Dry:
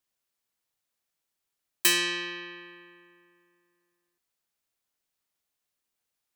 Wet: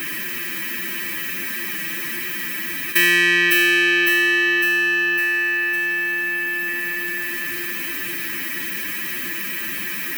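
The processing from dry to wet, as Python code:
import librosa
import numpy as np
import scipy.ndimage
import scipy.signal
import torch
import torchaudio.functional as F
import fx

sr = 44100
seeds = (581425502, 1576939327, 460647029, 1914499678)

p1 = fx.bin_compress(x, sr, power=0.6)
p2 = fx.quant_float(p1, sr, bits=2)
p3 = p1 + (p2 * 10.0 ** (-4.0 / 20.0))
p4 = fx.graphic_eq(p3, sr, hz=(125, 250, 500, 1000, 2000, 4000, 8000), db=(-3, 10, -8, -7, 11, -9, -11))
p5 = p4 + fx.echo_feedback(p4, sr, ms=347, feedback_pct=42, wet_db=-4, dry=0)
p6 = fx.stretch_vocoder(p5, sr, factor=1.6)
p7 = scipy.signal.sosfilt(scipy.signal.butter(2, 71.0, 'highpass', fs=sr, output='sos'), p6)
y = fx.env_flatten(p7, sr, amount_pct=70)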